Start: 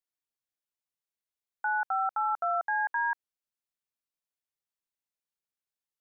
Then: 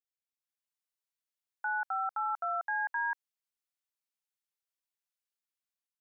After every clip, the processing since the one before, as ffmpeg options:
ffmpeg -i in.wav -af "highpass=frequency=1100:poles=1,dynaudnorm=framelen=170:gausssize=5:maxgain=8dB,volume=-9dB" out.wav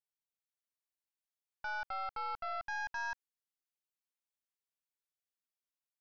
ffmpeg -i in.wav -af "aeval=exprs='0.0531*(cos(1*acos(clip(val(0)/0.0531,-1,1)))-cos(1*PI/2))+0.00841*(cos(4*acos(clip(val(0)/0.0531,-1,1)))-cos(4*PI/2))+0.000376*(cos(5*acos(clip(val(0)/0.0531,-1,1)))-cos(5*PI/2))':channel_layout=same,volume=-6.5dB" out.wav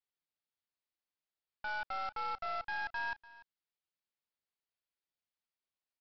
ffmpeg -i in.wav -af "aresample=11025,acrusher=bits=3:mode=log:mix=0:aa=0.000001,aresample=44100,aecho=1:1:293:0.112" out.wav

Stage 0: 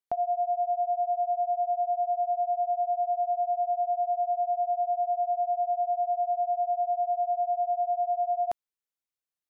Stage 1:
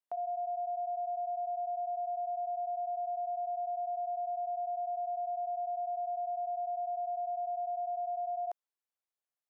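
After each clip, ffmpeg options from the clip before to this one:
ffmpeg -i in.wav -af "highpass=480,equalizer=frequency=640:width=0.55:gain=8.5,alimiter=level_in=1dB:limit=-24dB:level=0:latency=1:release=40,volume=-1dB,volume=-6.5dB" out.wav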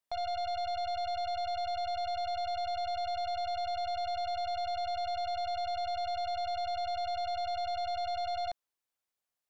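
ffmpeg -i in.wav -filter_complex "[0:a]asplit=2[link_01][link_02];[link_02]asoftclip=type=hard:threshold=-39.5dB,volume=-11.5dB[link_03];[link_01][link_03]amix=inputs=2:normalize=0,aeval=exprs='0.0299*(cos(1*acos(clip(val(0)/0.0299,-1,1)))-cos(1*PI/2))+0.00376*(cos(3*acos(clip(val(0)/0.0299,-1,1)))-cos(3*PI/2))+0.00376*(cos(5*acos(clip(val(0)/0.0299,-1,1)))-cos(5*PI/2))+0.00596*(cos(6*acos(clip(val(0)/0.0299,-1,1)))-cos(6*PI/2))':channel_layout=same" out.wav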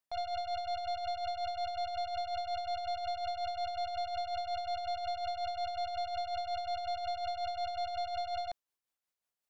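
ffmpeg -i in.wav -af "tremolo=f=5.5:d=0.48" out.wav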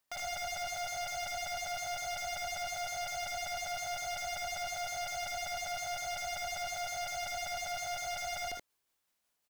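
ffmpeg -i in.wav -af "aeval=exprs='0.0447*sin(PI/2*3.98*val(0)/0.0447)':channel_layout=same,acrusher=bits=3:mode=log:mix=0:aa=0.000001,aecho=1:1:57|79:0.447|0.631,volume=-9dB" out.wav

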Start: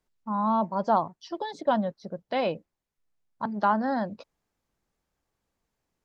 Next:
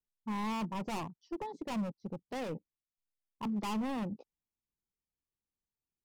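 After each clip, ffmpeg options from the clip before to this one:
ffmpeg -i in.wav -af "afwtdn=0.0112,volume=30dB,asoftclip=hard,volume=-30dB,equalizer=frequency=630:width_type=o:width=0.67:gain=-11,equalizer=frequency=1600:width_type=o:width=0.67:gain=-11,equalizer=frequency=4000:width_type=o:width=0.67:gain=-5" out.wav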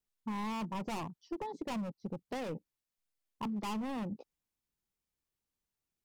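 ffmpeg -i in.wav -af "acompressor=threshold=-39dB:ratio=4,volume=3.5dB" out.wav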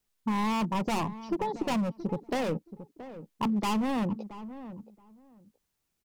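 ffmpeg -i in.wav -filter_complex "[0:a]asplit=2[link_01][link_02];[link_02]adelay=675,lowpass=frequency=1200:poles=1,volume=-13dB,asplit=2[link_03][link_04];[link_04]adelay=675,lowpass=frequency=1200:poles=1,volume=0.18[link_05];[link_01][link_03][link_05]amix=inputs=3:normalize=0,volume=9dB" out.wav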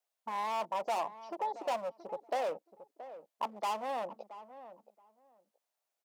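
ffmpeg -i in.wav -af "highpass=frequency=640:width_type=q:width=3.8,volume=-7.5dB" out.wav

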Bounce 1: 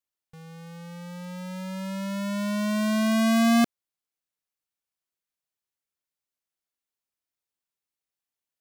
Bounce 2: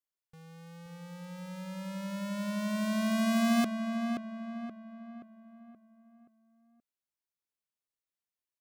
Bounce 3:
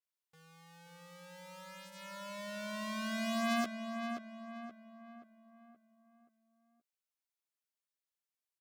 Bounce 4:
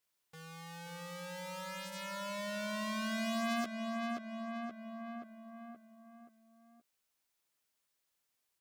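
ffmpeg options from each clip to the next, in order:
ffmpeg -i in.wav -filter_complex "[0:a]asplit=2[link_01][link_02];[link_02]adelay=526,lowpass=frequency=2300:poles=1,volume=-6dB,asplit=2[link_03][link_04];[link_04]adelay=526,lowpass=frequency=2300:poles=1,volume=0.46,asplit=2[link_05][link_06];[link_06]adelay=526,lowpass=frequency=2300:poles=1,volume=0.46,asplit=2[link_07][link_08];[link_08]adelay=526,lowpass=frequency=2300:poles=1,volume=0.46,asplit=2[link_09][link_10];[link_10]adelay=526,lowpass=frequency=2300:poles=1,volume=0.46,asplit=2[link_11][link_12];[link_12]adelay=526,lowpass=frequency=2300:poles=1,volume=0.46[link_13];[link_01][link_03][link_05][link_07][link_09][link_11][link_13]amix=inputs=7:normalize=0,volume=-7dB" out.wav
ffmpeg -i in.wav -filter_complex "[0:a]highpass=frequency=660:poles=1,asplit=2[link_01][link_02];[link_02]adelay=13,volume=-5dB[link_03];[link_01][link_03]amix=inputs=2:normalize=0,adynamicequalizer=threshold=0.002:dfrequency=6900:dqfactor=0.7:tfrequency=6900:tqfactor=0.7:attack=5:release=100:ratio=0.375:range=3.5:mode=cutabove:tftype=highshelf,volume=-3dB" out.wav
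ffmpeg -i in.wav -af "acompressor=threshold=-51dB:ratio=2,volume=10.5dB" out.wav

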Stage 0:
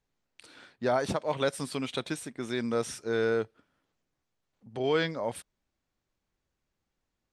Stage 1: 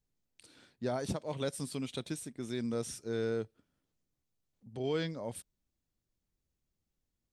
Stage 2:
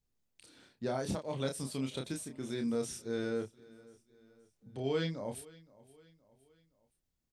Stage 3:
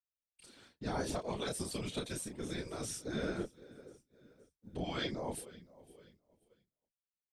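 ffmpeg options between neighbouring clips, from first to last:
ffmpeg -i in.wav -af "equalizer=frequency=1300:width=0.34:gain=-12" out.wav
ffmpeg -i in.wav -filter_complex "[0:a]asplit=2[link_01][link_02];[link_02]adelay=30,volume=-5dB[link_03];[link_01][link_03]amix=inputs=2:normalize=0,aecho=1:1:519|1038|1557:0.0794|0.0373|0.0175,volume=-1dB" out.wav
ffmpeg -i in.wav -af "agate=range=-33dB:threshold=-60dB:ratio=3:detection=peak,afftfilt=real='re*lt(hypot(re,im),0.126)':imag='im*lt(hypot(re,im),0.126)':win_size=1024:overlap=0.75,afftfilt=real='hypot(re,im)*cos(2*PI*random(0))':imag='hypot(re,im)*sin(2*PI*random(1))':win_size=512:overlap=0.75,volume=7.5dB" out.wav

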